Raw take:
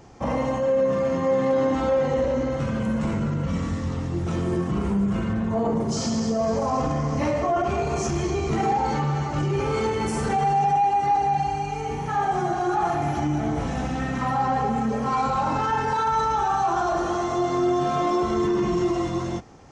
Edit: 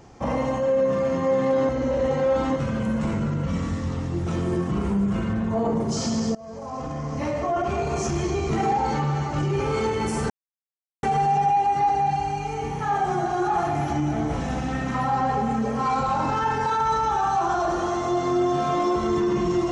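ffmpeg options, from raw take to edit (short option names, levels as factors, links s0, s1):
-filter_complex "[0:a]asplit=5[s0][s1][s2][s3][s4];[s0]atrim=end=1.692[s5];[s1]atrim=start=1.688:end=2.562,asetpts=PTS-STARTPTS,areverse[s6];[s2]atrim=start=2.558:end=6.35,asetpts=PTS-STARTPTS,afade=t=out:st=3.788:d=0.004:c=hsin:silence=0.0794328[s7];[s3]atrim=start=6.35:end=10.3,asetpts=PTS-STARTPTS,afade=t=in:d=1.99:c=qsin:silence=0.0794328,afade=t=out:st=3.946:d=0.004:c=hsin,apad=pad_dur=0.73[s8];[s4]atrim=start=10.3,asetpts=PTS-STARTPTS,afade=t=in:d=0.004:c=hsin[s9];[s5][s6]acrossfade=d=0.004:c1=hsin:c2=hsin[s10];[s7][s8][s9]concat=n=3:v=0:a=1[s11];[s10][s11]acrossfade=d=0.004:c1=hsin:c2=hsin"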